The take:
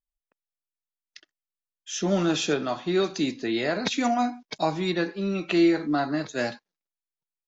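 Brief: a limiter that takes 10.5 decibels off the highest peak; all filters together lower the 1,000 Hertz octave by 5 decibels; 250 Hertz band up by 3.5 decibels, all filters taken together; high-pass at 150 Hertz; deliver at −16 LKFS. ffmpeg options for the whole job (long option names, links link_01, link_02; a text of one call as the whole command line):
ffmpeg -i in.wav -af "highpass=150,equalizer=frequency=250:width_type=o:gain=6.5,equalizer=frequency=1000:width_type=o:gain=-9,volume=12.5dB,alimiter=limit=-7.5dB:level=0:latency=1" out.wav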